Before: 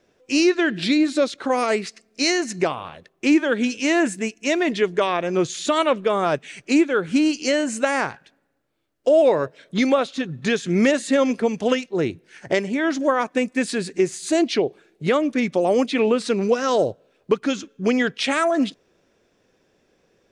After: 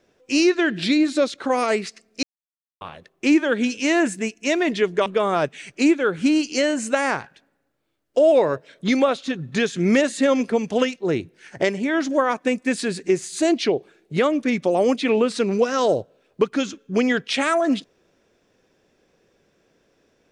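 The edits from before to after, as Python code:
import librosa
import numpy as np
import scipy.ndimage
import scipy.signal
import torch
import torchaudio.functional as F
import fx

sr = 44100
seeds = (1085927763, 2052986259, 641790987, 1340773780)

y = fx.edit(x, sr, fx.silence(start_s=2.23, length_s=0.58),
    fx.cut(start_s=5.06, length_s=0.9), tone=tone)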